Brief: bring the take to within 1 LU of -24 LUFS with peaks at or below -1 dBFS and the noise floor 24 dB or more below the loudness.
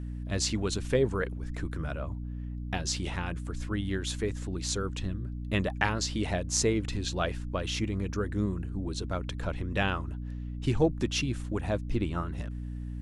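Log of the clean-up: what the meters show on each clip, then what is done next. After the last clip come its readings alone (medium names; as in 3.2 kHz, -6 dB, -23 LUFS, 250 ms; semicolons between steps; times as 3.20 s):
hum 60 Hz; highest harmonic 300 Hz; hum level -34 dBFS; loudness -32.0 LUFS; peak level -8.5 dBFS; loudness target -24.0 LUFS
-> hum notches 60/120/180/240/300 Hz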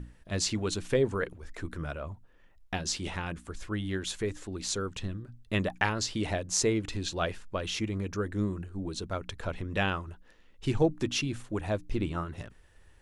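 hum not found; loudness -32.5 LUFS; peak level -8.0 dBFS; loudness target -24.0 LUFS
-> trim +8.5 dB; peak limiter -1 dBFS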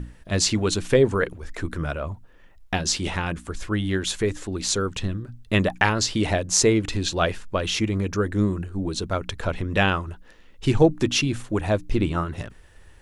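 loudness -24.0 LUFS; peak level -1.0 dBFS; noise floor -50 dBFS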